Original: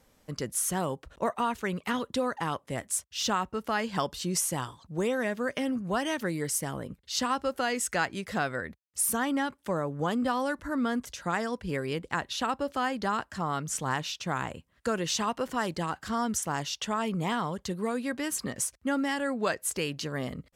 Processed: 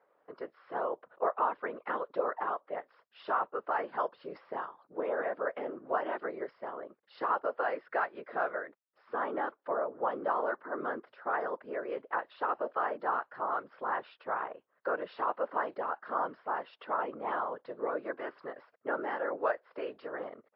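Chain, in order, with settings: whisperiser; Chebyshev band-pass 470–1400 Hz, order 2; MP3 40 kbps 12000 Hz

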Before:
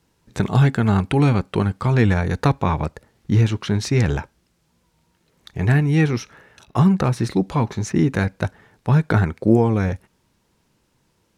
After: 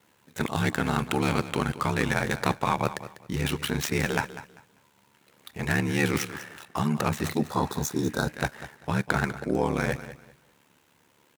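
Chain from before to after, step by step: median filter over 9 samples; vibrato 1.7 Hz 8.3 cents; reverse; compressor, threshold -23 dBFS, peak gain reduction 13.5 dB; reverse; ring modulator 36 Hz; HPF 66 Hz; tilt +3 dB/oct; on a send: feedback echo 0.197 s, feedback 24%, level -14 dB; on the sum: spectral repair 7.49–8.29, 1600–3300 Hz; gain +8.5 dB

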